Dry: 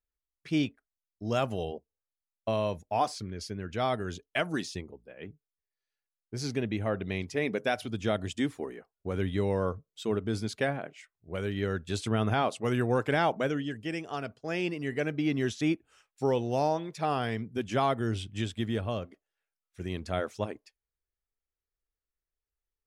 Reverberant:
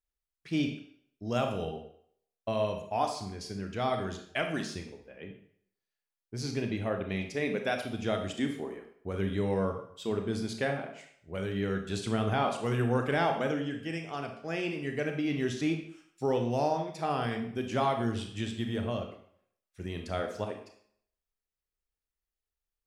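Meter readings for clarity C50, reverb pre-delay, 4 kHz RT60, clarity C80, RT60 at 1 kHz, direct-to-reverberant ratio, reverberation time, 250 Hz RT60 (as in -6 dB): 7.0 dB, 26 ms, 0.55 s, 10.0 dB, 0.65 s, 4.0 dB, 0.65 s, 0.55 s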